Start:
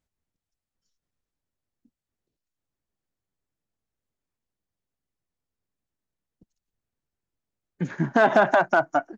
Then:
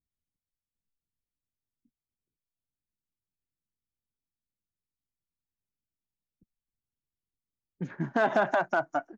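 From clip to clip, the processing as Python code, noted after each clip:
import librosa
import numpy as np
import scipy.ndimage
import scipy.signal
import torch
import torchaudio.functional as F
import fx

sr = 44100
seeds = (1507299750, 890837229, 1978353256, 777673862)

y = fx.env_lowpass(x, sr, base_hz=310.0, full_db=-20.5)
y = y * librosa.db_to_amplitude(-7.0)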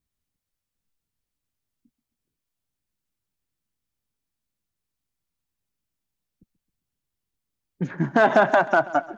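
y = fx.echo_feedback(x, sr, ms=133, feedback_pct=49, wet_db=-19.0)
y = y * librosa.db_to_amplitude(8.0)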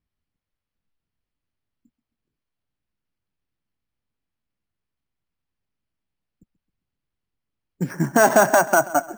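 y = np.repeat(scipy.signal.resample_poly(x, 1, 6), 6)[:len(x)]
y = y * librosa.db_to_amplitude(2.0)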